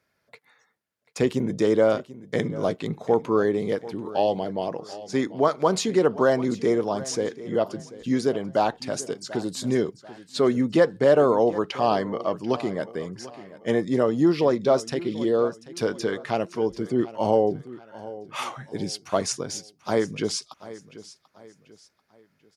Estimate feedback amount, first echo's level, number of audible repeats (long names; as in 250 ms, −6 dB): 37%, −17.0 dB, 3